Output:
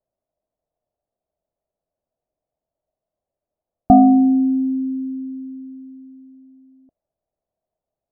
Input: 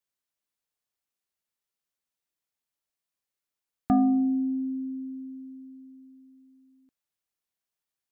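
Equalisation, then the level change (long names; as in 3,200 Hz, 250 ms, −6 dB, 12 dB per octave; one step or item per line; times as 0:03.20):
low-pass with resonance 640 Hz, resonance Q 6.9
low-shelf EQ 150 Hz +11 dB
+6.0 dB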